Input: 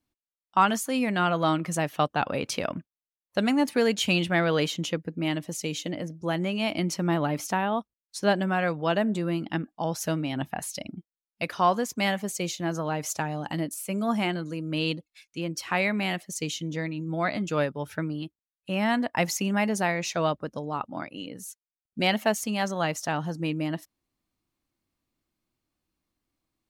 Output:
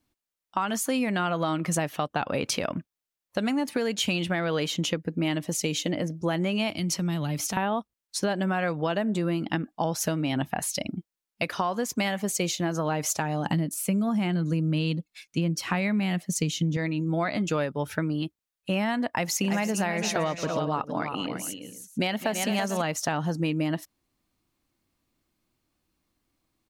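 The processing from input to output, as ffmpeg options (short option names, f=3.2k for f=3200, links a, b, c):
-filter_complex "[0:a]asettb=1/sr,asplit=3[a][b][c];[a]atrim=end=6.704[d];[b]atrim=start=6.7:end=7.57,asetpts=PTS-STARTPTS,afade=t=in:d=0.004:c=qsin,afade=t=out:st=0.866:d=0.004:c=qsin,acrossover=split=170|3000[e][f][g];[f]acompressor=threshold=-41dB:ratio=4:attack=3.2:release=140:knee=2.83:detection=peak[h];[e][h][g]amix=inputs=3:normalize=0[i];[c]atrim=start=7.566[j];[d][i]acrossfade=d=0.004:c1=hsin:c2=qsin[k];[k][j]acrossfade=d=0.004:c1=qsin:c2=hsin,asettb=1/sr,asplit=3[l][m][n];[l]atrim=end=13.454[o];[m]atrim=start=13.45:end=16.77,asetpts=PTS-STARTPTS,afade=t=in:d=0.004:c=qsin,afade=t=out:st=3.316:d=0.004:c=qsin,equalizer=f=170:w=1.3:g=10.5[p];[n]atrim=start=16.766[q];[o][p]acrossfade=d=0.004:c1=hsin:c2=qsin[r];[r][q]acrossfade=d=0.004:c1=qsin:c2=hsin,asplit=3[s][t][u];[s]afade=t=out:st=19.43:d=0.02[v];[t]aecho=1:1:223|333|445:0.15|0.335|0.119,afade=t=in:st=19.43:d=0.02,afade=t=out:st=22.81:d=0.02[w];[u]afade=t=in:st=22.81:d=0.02[x];[v][w][x]amix=inputs=3:normalize=0,alimiter=limit=-17.5dB:level=0:latency=1:release=268,acompressor=threshold=-29dB:ratio=6,volume=6dB"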